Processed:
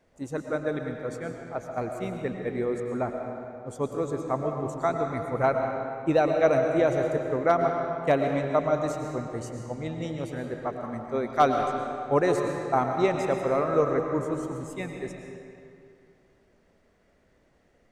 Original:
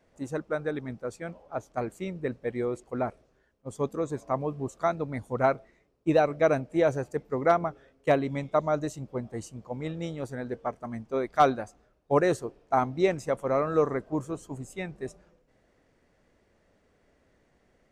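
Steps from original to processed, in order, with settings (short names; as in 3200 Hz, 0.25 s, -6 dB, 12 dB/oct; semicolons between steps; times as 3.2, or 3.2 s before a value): digital reverb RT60 2.5 s, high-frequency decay 0.75×, pre-delay 75 ms, DRR 3 dB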